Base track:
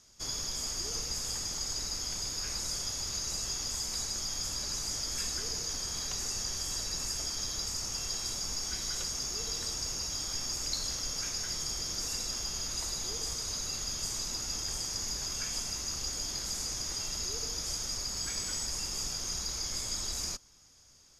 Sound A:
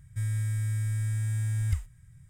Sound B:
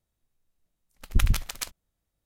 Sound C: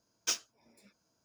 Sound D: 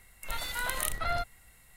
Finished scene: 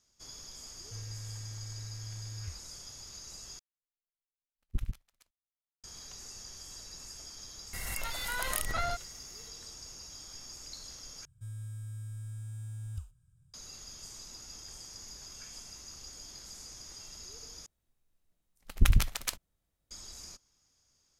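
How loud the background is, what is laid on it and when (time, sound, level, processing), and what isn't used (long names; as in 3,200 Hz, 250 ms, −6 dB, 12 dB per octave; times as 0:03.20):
base track −12 dB
0:00.75: mix in A −14.5 dB + low-pass filter 3,200 Hz
0:03.59: overwrite with B −10 dB + expander for the loud parts 2.5 to 1, over −32 dBFS
0:07.73: mix in D −3 dB + background raised ahead of every attack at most 21 dB per second
0:11.25: overwrite with A −12.5 dB + Butterworth band-reject 2,000 Hz, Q 2
0:17.66: overwrite with B −1 dB
not used: C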